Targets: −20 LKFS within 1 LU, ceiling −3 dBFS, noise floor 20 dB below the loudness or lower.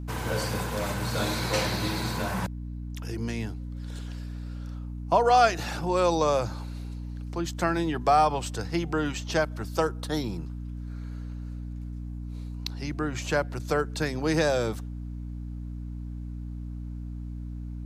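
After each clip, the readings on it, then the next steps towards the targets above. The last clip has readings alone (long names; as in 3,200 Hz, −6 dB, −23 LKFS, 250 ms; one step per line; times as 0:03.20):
mains hum 60 Hz; hum harmonics up to 300 Hz; level of the hum −33 dBFS; integrated loudness −29.5 LKFS; sample peak −9.0 dBFS; target loudness −20.0 LKFS
→ mains-hum notches 60/120/180/240/300 Hz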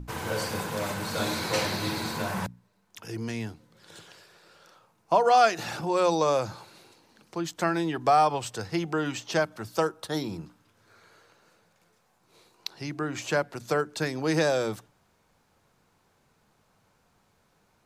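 mains hum none found; integrated loudness −27.5 LKFS; sample peak −9.5 dBFS; target loudness −20.0 LKFS
→ level +7.5 dB
brickwall limiter −3 dBFS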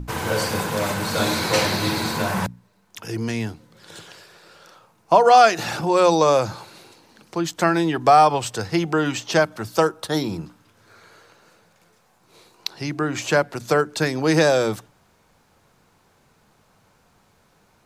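integrated loudness −20.5 LKFS; sample peak −3.0 dBFS; background noise floor −61 dBFS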